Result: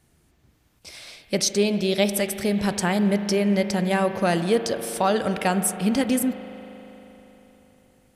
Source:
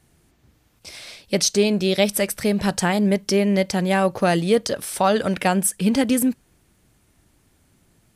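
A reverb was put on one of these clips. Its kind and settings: spring tank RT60 3.9 s, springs 39 ms, chirp 75 ms, DRR 9 dB; gain -3 dB

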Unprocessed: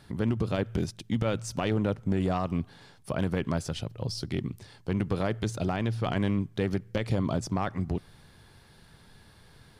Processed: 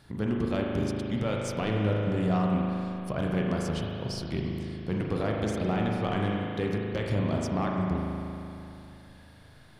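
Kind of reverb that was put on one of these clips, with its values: spring tank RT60 2.9 s, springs 38 ms, chirp 60 ms, DRR -1.5 dB; gain -2.5 dB

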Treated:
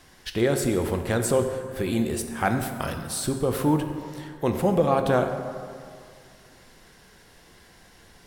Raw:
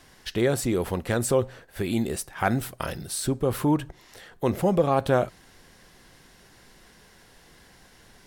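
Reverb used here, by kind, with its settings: plate-style reverb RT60 2.2 s, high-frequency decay 0.5×, DRR 5.5 dB

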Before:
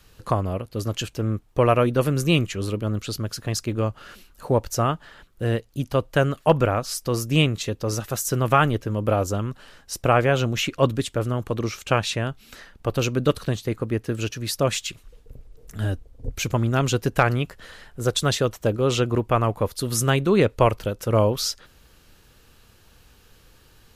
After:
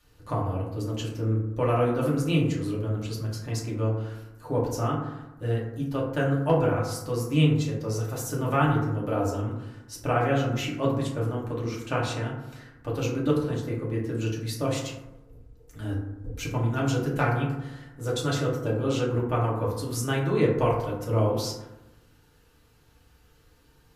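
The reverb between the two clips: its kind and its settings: FDN reverb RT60 0.97 s, low-frequency decay 1.2×, high-frequency decay 0.35×, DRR -5 dB; gain -12 dB

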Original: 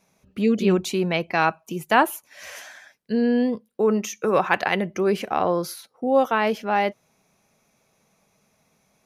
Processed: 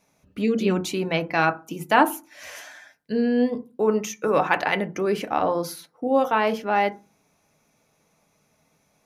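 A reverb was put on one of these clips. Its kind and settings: FDN reverb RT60 0.3 s, low-frequency decay 1.4×, high-frequency decay 0.35×, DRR 7.5 dB; gain -1 dB

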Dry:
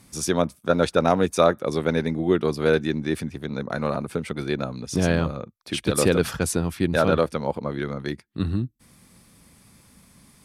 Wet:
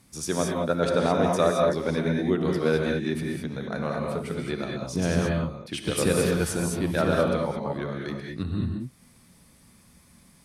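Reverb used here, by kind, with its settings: non-linear reverb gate 0.24 s rising, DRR 0 dB; gain -5.5 dB

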